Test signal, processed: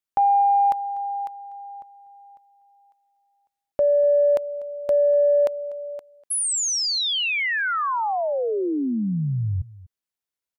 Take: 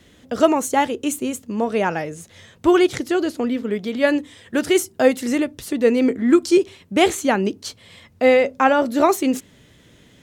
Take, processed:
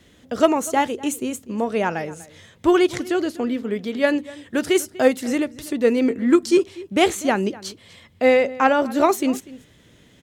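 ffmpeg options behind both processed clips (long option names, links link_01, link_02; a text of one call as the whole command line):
ffmpeg -i in.wav -filter_complex "[0:a]asplit=2[link_01][link_02];[link_02]adelay=244.9,volume=-19dB,highshelf=frequency=4000:gain=-5.51[link_03];[link_01][link_03]amix=inputs=2:normalize=0,aeval=exprs='0.841*(cos(1*acos(clip(val(0)/0.841,-1,1)))-cos(1*PI/2))+0.0531*(cos(3*acos(clip(val(0)/0.841,-1,1)))-cos(3*PI/2))':channel_layout=same" out.wav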